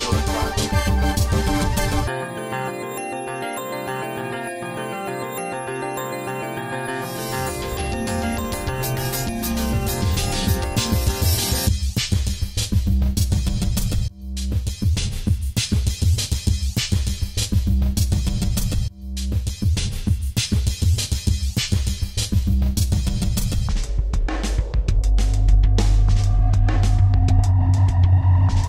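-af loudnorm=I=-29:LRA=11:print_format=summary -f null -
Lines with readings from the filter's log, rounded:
Input Integrated:    -21.4 LUFS
Input True Peak:      -5.0 dBTP
Input LRA:             8.6 LU
Input Threshold:     -31.4 LUFS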